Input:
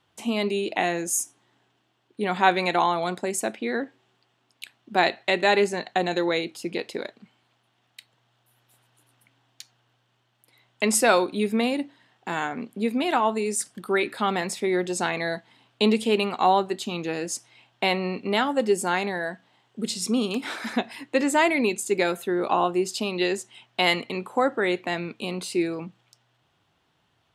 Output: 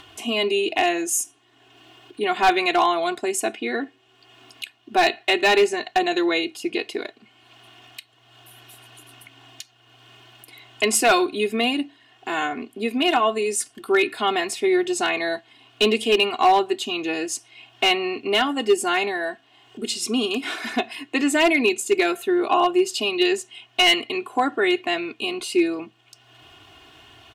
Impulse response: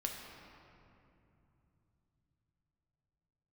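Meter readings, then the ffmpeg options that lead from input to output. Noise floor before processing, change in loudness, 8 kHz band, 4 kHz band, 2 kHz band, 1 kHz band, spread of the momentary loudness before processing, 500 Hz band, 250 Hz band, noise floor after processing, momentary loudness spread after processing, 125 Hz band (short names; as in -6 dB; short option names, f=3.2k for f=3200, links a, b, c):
-70 dBFS, +3.5 dB, +2.5 dB, +7.5 dB, +4.0 dB, +3.0 dB, 11 LU, +3.0 dB, +2.0 dB, -59 dBFS, 11 LU, n/a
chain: -af "equalizer=f=2.8k:w=3.6:g=8,aecho=1:1:2.8:0.86,acompressor=mode=upward:threshold=-34dB:ratio=2.5,asoftclip=type=hard:threshold=-10.5dB"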